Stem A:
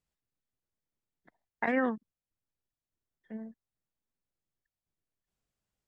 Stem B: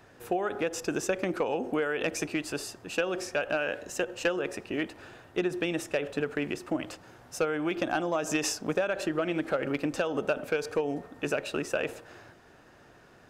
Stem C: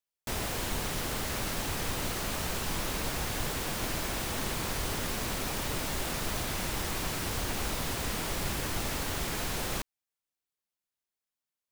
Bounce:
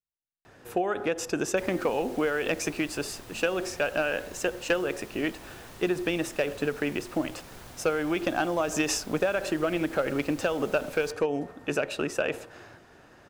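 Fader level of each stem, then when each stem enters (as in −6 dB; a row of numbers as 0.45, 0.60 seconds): −16.0, +2.0, −15.0 decibels; 0.00, 0.45, 1.30 seconds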